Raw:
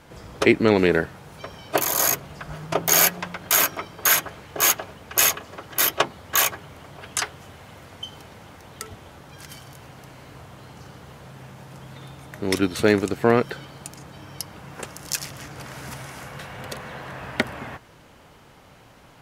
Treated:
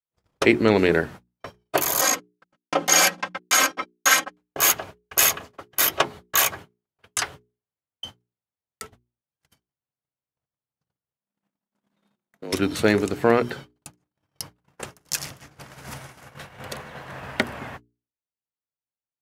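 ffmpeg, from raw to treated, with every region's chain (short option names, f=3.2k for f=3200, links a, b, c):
-filter_complex "[0:a]asettb=1/sr,asplit=3[a][b][c];[a]atrim=end=2.014[d];[b]atrim=start=2.01:end=4.37,asetpts=PTS-STARTPTS,afade=t=in:d=0.004:c=qsin,afade=t=out:st=2.356:d=0.004:c=qsin,agate=range=-50dB:threshold=-34dB:ratio=16:release=100:detection=peak,highpass=170,lowpass=7.6k,aecho=1:1:3.8:1,atrim=end_sample=104076[e];[c]atrim=start=4.366[f];[d][e]acrossfade=d=0.004:c1=hsin:c2=qsin[g];[g][f]acrossfade=d=0.004:c1=qsin:c2=hsin,asettb=1/sr,asplit=3[h][i][j];[h]atrim=end=11.184[k];[i]atrim=start=11.18:end=12.53,asetpts=PTS-STARTPTS,afade=t=in:d=0.004:c=qsin,afade=t=out:st=1.346:d=0.004:c=qsin,afreqshift=68,bandreject=f=50:t=h:w=6,bandreject=f=100:t=h:w=6,bandreject=f=150:t=h:w=6,acompressor=threshold=-36dB:ratio=2:attack=3.2:release=140:knee=1:detection=peak[l];[j]atrim=start=12.526[m];[k][l]acrossfade=d=0.004:c1=hsin:c2=qsin[n];[n][m]acrossfade=d=0.004:c1=qsin:c2=hsin,agate=range=-55dB:threshold=-36dB:ratio=16:detection=peak,bandreject=f=60:t=h:w=6,bandreject=f=120:t=h:w=6,bandreject=f=180:t=h:w=6,bandreject=f=240:t=h:w=6,bandreject=f=300:t=h:w=6,bandreject=f=360:t=h:w=6,bandreject=f=420:t=h:w=6"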